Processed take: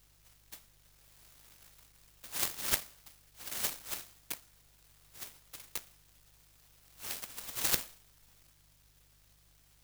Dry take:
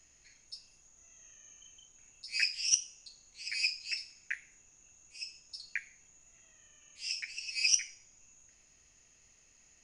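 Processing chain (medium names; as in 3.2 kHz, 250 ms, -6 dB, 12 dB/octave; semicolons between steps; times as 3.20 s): mains buzz 50 Hz, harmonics 3, -66 dBFS -5 dB/octave; delay time shaken by noise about 4.5 kHz, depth 0.45 ms; trim -2.5 dB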